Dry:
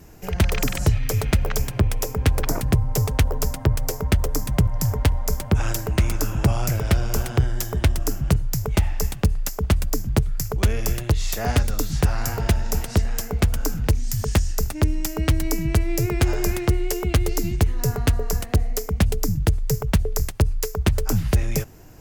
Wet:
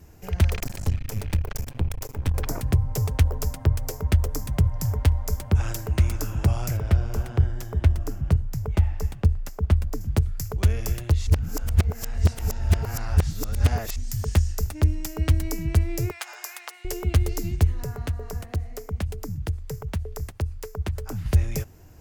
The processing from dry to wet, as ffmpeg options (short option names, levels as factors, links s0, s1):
-filter_complex "[0:a]asettb=1/sr,asplit=3[s0][s1][s2];[s0]atrim=end=0.564[s3];[s1]atrim=start=0.56:end=2.35,asetpts=PTS-STARTPTS,afade=t=in:d=0.004:c=qsin,afade=t=out:st=1.786:d=0.004:c=qsin,aeval=exprs='max(val(0),0)':c=same[s4];[s2]atrim=start=2.346[s5];[s3][s4]acrossfade=d=0.004:c1=hsin:c2=qsin[s6];[s6][s5]acrossfade=d=0.004:c1=qsin:c2=hsin,asettb=1/sr,asplit=3[s7][s8][s9];[s7]atrim=end=6.774[s10];[s8]atrim=start=6.77:end=10.01,asetpts=PTS-STARTPTS,afade=t=in:d=0.004:c=qsin,afade=t=out:st=3.236:d=0.004:c=qsin,highshelf=f=3100:g=-10[s11];[s9]atrim=start=10.006[s12];[s10][s11]acrossfade=d=0.004:c1=hsin:c2=qsin[s13];[s13][s12]acrossfade=d=0.004:c1=qsin:c2=hsin,asettb=1/sr,asplit=3[s14][s15][s16];[s14]atrim=end=16.114[s17];[s15]atrim=start=16.11:end=16.85,asetpts=PTS-STARTPTS,afade=t=in:d=0.004:c=qsin,afade=t=out:st=0.736:d=0.004:c=qsin,highpass=f=820:w=0.5412,highpass=f=820:w=1.3066[s18];[s16]atrim=start=16.846[s19];[s17][s18]acrossfade=d=0.004:c1=hsin:c2=qsin[s20];[s20][s19]acrossfade=d=0.004:c1=qsin:c2=hsin,asettb=1/sr,asplit=3[s21][s22][s23];[s21]atrim=end=17.834[s24];[s22]atrim=start=17.83:end=21.26,asetpts=PTS-STARTPTS,afade=t=in:d=0.004:c=qsin,afade=t=out:st=3.426:d=0.004:c=qsin,acrossover=split=86|820|2200[s25][s26][s27][s28];[s25]acompressor=threshold=0.0251:ratio=3[s29];[s26]acompressor=threshold=0.0398:ratio=3[s30];[s27]acompressor=threshold=0.0158:ratio=3[s31];[s28]acompressor=threshold=0.0126:ratio=3[s32];[s29][s30][s31][s32]amix=inputs=4:normalize=0[s33];[s23]atrim=start=21.256[s34];[s24][s33]acrossfade=d=0.004:c1=hsin:c2=qsin[s35];[s35][s34]acrossfade=d=0.004:c1=qsin:c2=hsin,asplit=3[s36][s37][s38];[s36]atrim=end=11.272[s39];[s37]atrim=start=11.268:end=13.962,asetpts=PTS-STARTPTS,areverse[s40];[s38]atrim=start=13.958[s41];[s39][s40]acrossfade=d=0.004:c1=hsin:c2=hsin[s42];[s42][s41]acrossfade=d=0.004:c1=hsin:c2=hsin,equalizer=f=81:t=o:w=0.52:g=10.5,volume=0.501"